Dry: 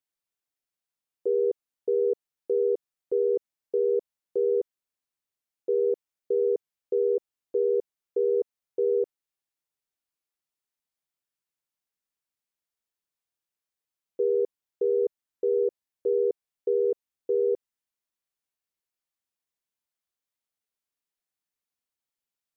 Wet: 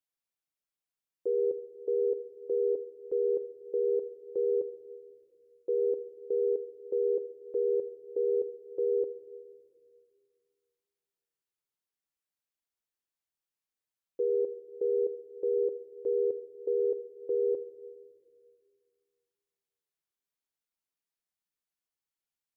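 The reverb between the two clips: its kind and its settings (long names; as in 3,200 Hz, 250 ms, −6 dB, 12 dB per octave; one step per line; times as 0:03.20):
rectangular room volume 3,200 cubic metres, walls mixed, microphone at 0.62 metres
level −4.5 dB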